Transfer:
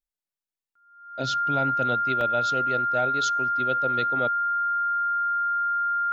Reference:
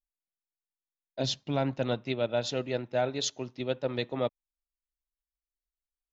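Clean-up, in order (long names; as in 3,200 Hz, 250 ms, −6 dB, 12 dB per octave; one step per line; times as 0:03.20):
notch filter 1,400 Hz, Q 30
repair the gap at 0:02.21, 1.1 ms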